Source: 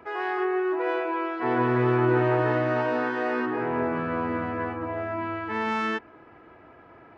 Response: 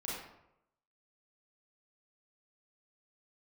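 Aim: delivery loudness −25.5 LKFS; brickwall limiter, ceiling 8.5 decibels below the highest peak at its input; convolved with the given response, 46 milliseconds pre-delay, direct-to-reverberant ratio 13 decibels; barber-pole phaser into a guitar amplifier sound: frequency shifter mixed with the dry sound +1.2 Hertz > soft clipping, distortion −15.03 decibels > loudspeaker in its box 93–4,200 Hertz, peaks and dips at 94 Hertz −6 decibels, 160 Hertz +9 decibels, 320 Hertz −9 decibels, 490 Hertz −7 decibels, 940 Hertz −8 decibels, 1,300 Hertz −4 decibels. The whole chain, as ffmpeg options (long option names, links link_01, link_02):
-filter_complex "[0:a]alimiter=limit=-20dB:level=0:latency=1,asplit=2[link_01][link_02];[1:a]atrim=start_sample=2205,adelay=46[link_03];[link_02][link_03]afir=irnorm=-1:irlink=0,volume=-15dB[link_04];[link_01][link_04]amix=inputs=2:normalize=0,asplit=2[link_05][link_06];[link_06]afreqshift=1.2[link_07];[link_05][link_07]amix=inputs=2:normalize=1,asoftclip=threshold=-27dB,highpass=93,equalizer=frequency=94:width_type=q:width=4:gain=-6,equalizer=frequency=160:width_type=q:width=4:gain=9,equalizer=frequency=320:width_type=q:width=4:gain=-9,equalizer=frequency=490:width_type=q:width=4:gain=-7,equalizer=frequency=940:width_type=q:width=4:gain=-8,equalizer=frequency=1300:width_type=q:width=4:gain=-4,lowpass=frequency=4200:width=0.5412,lowpass=frequency=4200:width=1.3066,volume=11.5dB"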